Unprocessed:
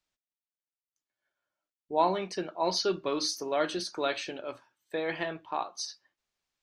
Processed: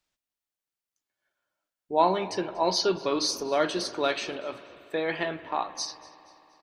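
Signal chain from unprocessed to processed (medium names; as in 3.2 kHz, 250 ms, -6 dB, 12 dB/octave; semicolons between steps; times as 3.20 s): frequency-shifting echo 238 ms, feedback 44%, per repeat -73 Hz, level -22 dB; spring tank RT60 3.4 s, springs 57 ms, chirp 70 ms, DRR 14 dB; trim +3.5 dB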